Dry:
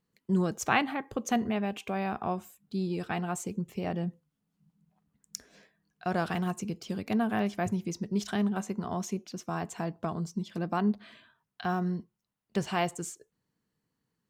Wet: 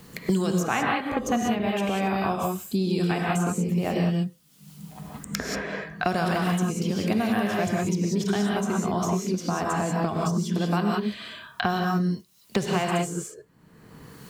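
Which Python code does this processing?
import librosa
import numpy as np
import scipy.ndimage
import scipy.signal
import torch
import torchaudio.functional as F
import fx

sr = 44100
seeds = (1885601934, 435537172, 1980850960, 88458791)

y = fx.high_shelf(x, sr, hz=9300.0, db=4.0)
y = fx.rev_gated(y, sr, seeds[0], gate_ms=210, shape='rising', drr_db=-1.5)
y = fx.band_squash(y, sr, depth_pct=100)
y = F.gain(torch.from_numpy(y), 2.5).numpy()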